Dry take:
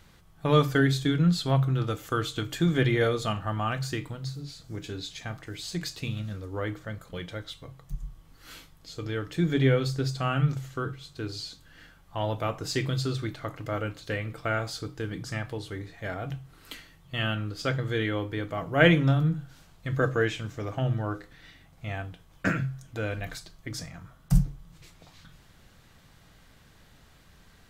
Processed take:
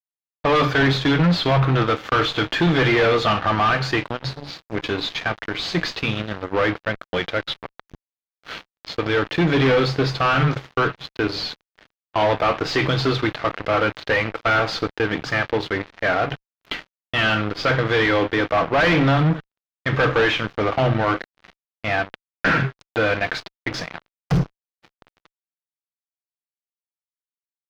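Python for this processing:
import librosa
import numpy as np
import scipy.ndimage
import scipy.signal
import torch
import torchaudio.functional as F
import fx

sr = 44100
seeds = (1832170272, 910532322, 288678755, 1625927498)

y = fx.highpass(x, sr, hz=690.0, slope=6)
y = fx.fuzz(y, sr, gain_db=39.0, gate_db=-47.0)
y = fx.air_absorb(y, sr, metres=270.0)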